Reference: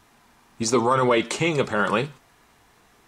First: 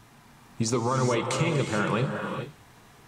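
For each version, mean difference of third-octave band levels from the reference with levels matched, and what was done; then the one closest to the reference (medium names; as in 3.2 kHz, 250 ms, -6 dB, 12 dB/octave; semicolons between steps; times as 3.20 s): 5.5 dB: peaking EQ 130 Hz +10.5 dB 1.1 oct; compression 3:1, threshold -27 dBFS, peak gain reduction 10.5 dB; gated-style reverb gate 460 ms rising, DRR 4.5 dB; trim +1.5 dB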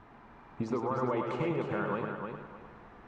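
8.0 dB: low-pass 1.5 kHz 12 dB/octave; compression 4:1, threshold -38 dBFS, peak gain reduction 18.5 dB; on a send: multi-head delay 102 ms, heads first and third, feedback 44%, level -6 dB; on the sum: trim +4 dB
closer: first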